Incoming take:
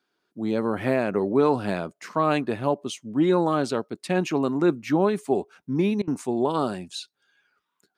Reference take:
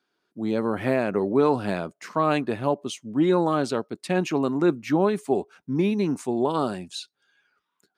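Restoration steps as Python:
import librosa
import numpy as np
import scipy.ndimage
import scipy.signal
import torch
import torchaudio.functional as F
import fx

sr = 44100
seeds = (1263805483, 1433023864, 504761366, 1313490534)

y = fx.fix_interpolate(x, sr, at_s=(6.02,), length_ms=54.0)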